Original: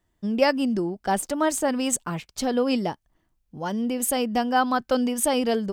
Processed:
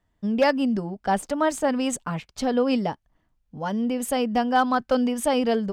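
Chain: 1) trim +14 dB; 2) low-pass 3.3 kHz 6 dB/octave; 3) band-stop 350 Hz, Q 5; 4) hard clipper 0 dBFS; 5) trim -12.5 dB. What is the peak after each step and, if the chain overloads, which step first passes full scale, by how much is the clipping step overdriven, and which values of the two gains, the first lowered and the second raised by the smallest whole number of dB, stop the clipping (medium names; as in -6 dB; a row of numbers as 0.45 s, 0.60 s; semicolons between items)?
+6.0 dBFS, +6.0 dBFS, +5.5 dBFS, 0.0 dBFS, -12.5 dBFS; step 1, 5.5 dB; step 1 +8 dB, step 5 -6.5 dB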